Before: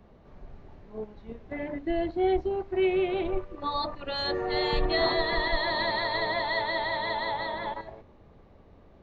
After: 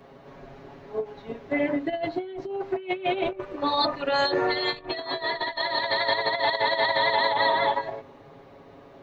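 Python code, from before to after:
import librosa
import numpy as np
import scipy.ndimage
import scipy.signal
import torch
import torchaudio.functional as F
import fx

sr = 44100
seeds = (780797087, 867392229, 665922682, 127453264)

y = x + 0.82 * np.pad(x, (int(7.3 * sr / 1000.0), 0))[:len(x)]
y = fx.over_compress(y, sr, threshold_db=-29.0, ratio=-0.5)
y = fx.highpass(y, sr, hz=320.0, slope=6)
y = fx.end_taper(y, sr, db_per_s=260.0)
y = y * 10.0 ** (5.5 / 20.0)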